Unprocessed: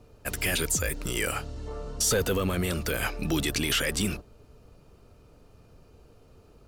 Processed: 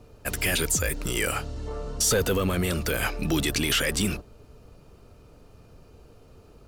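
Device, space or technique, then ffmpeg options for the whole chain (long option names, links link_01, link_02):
parallel distortion: -filter_complex "[0:a]asplit=2[link_01][link_02];[link_02]asoftclip=type=hard:threshold=-33.5dB,volume=-12dB[link_03];[link_01][link_03]amix=inputs=2:normalize=0,volume=1.5dB"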